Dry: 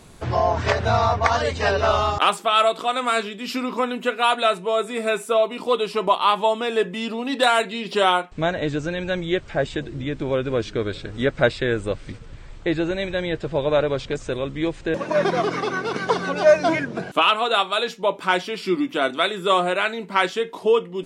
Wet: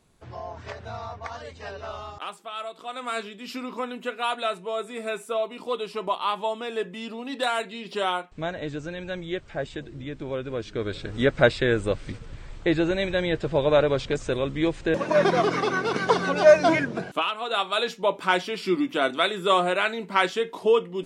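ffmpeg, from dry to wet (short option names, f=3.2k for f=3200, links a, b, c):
-af "volume=10.5dB,afade=t=in:st=2.73:d=0.45:silence=0.354813,afade=t=in:st=10.64:d=0.53:silence=0.398107,afade=t=out:st=16.85:d=0.48:silence=0.237137,afade=t=in:st=17.33:d=0.48:silence=0.298538"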